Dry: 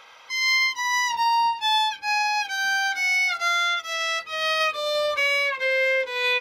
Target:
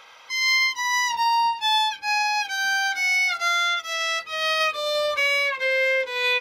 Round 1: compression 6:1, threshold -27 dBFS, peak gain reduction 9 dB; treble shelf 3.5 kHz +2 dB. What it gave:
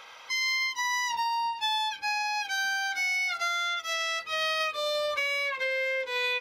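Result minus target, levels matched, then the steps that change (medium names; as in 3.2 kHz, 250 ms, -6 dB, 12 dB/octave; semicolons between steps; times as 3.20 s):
compression: peak gain reduction +9 dB
remove: compression 6:1, threshold -27 dBFS, peak gain reduction 9 dB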